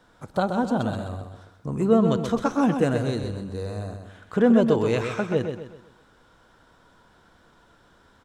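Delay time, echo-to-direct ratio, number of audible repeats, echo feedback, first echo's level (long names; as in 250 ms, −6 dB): 128 ms, −6.5 dB, 4, 39%, −7.0 dB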